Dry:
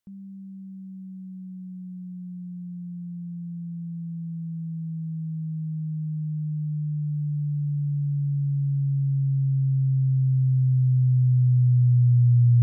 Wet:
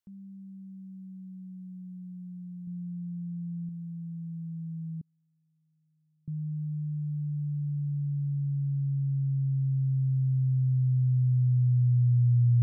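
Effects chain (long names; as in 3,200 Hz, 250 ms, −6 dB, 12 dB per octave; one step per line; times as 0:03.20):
0:02.67–0:03.69: parametric band 75 Hz +6 dB 2.9 octaves
0:05.01–0:06.28: gate with flip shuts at −42 dBFS, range −37 dB
level −5 dB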